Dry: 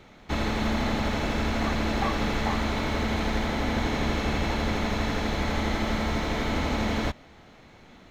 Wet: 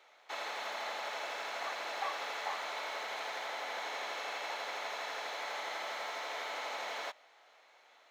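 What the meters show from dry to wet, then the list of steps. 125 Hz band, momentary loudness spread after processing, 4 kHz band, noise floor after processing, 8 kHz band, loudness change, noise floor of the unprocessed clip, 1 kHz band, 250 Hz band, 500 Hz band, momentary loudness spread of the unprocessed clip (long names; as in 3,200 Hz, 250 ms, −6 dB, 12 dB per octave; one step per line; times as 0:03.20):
below −40 dB, 2 LU, −7.5 dB, −64 dBFS, −7.5 dB, −11.0 dB, −52 dBFS, −7.5 dB, −33.5 dB, −12.0 dB, 1 LU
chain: high-pass filter 570 Hz 24 dB per octave
level −7.5 dB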